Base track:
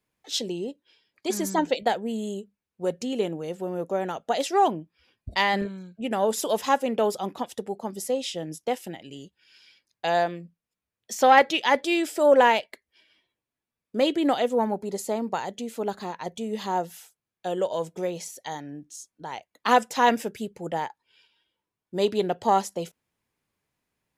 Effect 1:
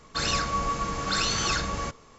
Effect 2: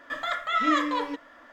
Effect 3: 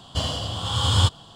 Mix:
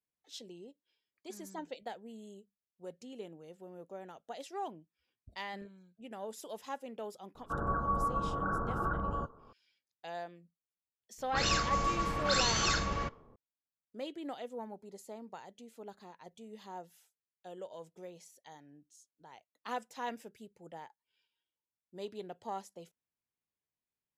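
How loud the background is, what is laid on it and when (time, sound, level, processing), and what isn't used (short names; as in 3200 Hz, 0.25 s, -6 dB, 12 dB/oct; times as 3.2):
base track -19 dB
7.35 add 1 -4 dB + steep low-pass 1500 Hz 96 dB/oct
11.18 add 1 -3.5 dB + low-pass opened by the level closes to 380 Hz, open at -22 dBFS
not used: 2, 3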